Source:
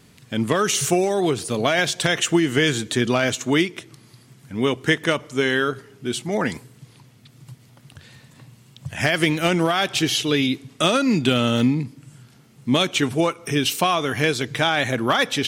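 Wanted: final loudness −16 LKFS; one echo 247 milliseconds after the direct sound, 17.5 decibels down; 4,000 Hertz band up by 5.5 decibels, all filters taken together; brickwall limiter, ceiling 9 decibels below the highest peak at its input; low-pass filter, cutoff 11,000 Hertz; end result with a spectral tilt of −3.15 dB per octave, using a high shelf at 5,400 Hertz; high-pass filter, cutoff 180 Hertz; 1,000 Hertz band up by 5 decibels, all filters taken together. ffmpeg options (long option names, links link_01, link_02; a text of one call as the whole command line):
ffmpeg -i in.wav -af "highpass=180,lowpass=11000,equalizer=frequency=1000:width_type=o:gain=6.5,equalizer=frequency=4000:width_type=o:gain=8.5,highshelf=frequency=5400:gain=-4.5,alimiter=limit=-9dB:level=0:latency=1,aecho=1:1:247:0.133,volume=4.5dB" out.wav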